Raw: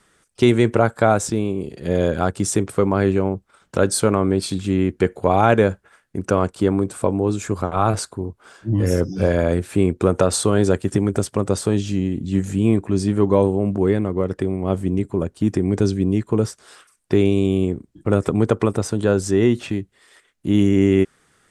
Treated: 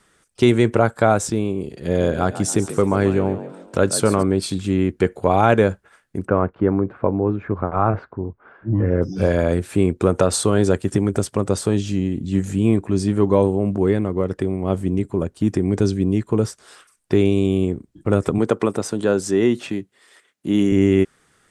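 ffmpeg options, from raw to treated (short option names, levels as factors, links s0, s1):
-filter_complex "[0:a]asettb=1/sr,asplit=3[s0][s1][s2];[s0]atrim=end=1.724[s3];[s1]atrim=start=1.72:end=4.23,asetpts=PTS-STARTPTS,afade=t=in:d=0.004:c=qsin,afade=t=out:st=2.506:d=0.004:c=qsin,asplit=5[s4][s5][s6][s7][s8];[s5]adelay=139,afreqshift=42,volume=0.224[s9];[s6]adelay=278,afreqshift=84,volume=0.101[s10];[s7]adelay=417,afreqshift=126,volume=0.0452[s11];[s8]adelay=556,afreqshift=168,volume=0.0204[s12];[s4][s9][s10][s11][s12]amix=inputs=5:normalize=0,atrim=end_sample=110691[s13];[s2]atrim=start=4.226[s14];[s3][s13]acrossfade=d=0.004:c1=hsin:c2=qsin[s15];[s15][s14]acrossfade=d=0.004:c1=qsin:c2=hsin,asplit=3[s16][s17][s18];[s16]afade=t=out:st=6.26:d=0.02[s19];[s17]lowpass=f=2000:w=0.5412,lowpass=f=2000:w=1.3066,afade=t=in:st=6.26:d=0.02,afade=t=out:st=9.01:d=0.02[s20];[s18]afade=t=in:st=9.01:d=0.02[s21];[s19][s20][s21]amix=inputs=3:normalize=0,asettb=1/sr,asplit=3[s22][s23][s24];[s22]atrim=end=18.384[s25];[s23]atrim=start=18.38:end=20.72,asetpts=PTS-STARTPTS,afade=t=in:d=0.004:c=qsin,afade=t=out:st=2.336:d=0.004:c=qsin,highpass=170[s26];[s24]atrim=start=20.716[s27];[s25][s26]acrossfade=d=0.004:c1=hsin:c2=qsin[s28];[s28][s27]acrossfade=d=0.004:c1=qsin:c2=hsin"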